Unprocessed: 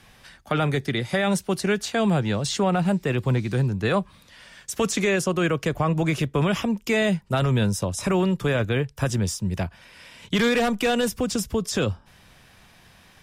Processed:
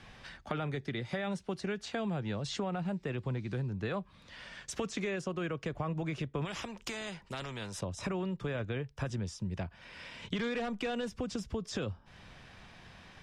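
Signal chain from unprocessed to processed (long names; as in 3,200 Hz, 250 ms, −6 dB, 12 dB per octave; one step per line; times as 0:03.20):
high-frequency loss of the air 95 metres
downward compressor 3 to 1, threshold −37 dBFS, peak gain reduction 14 dB
0:06.45–0:07.81: every bin compressed towards the loudest bin 2 to 1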